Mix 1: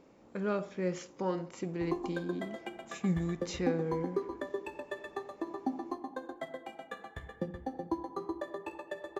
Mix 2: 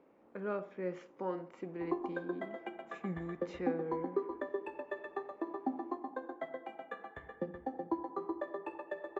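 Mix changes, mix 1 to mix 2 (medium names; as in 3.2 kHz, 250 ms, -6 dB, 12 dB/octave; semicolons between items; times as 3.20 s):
speech -3.5 dB; master: add three-band isolator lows -12 dB, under 220 Hz, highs -20 dB, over 2.6 kHz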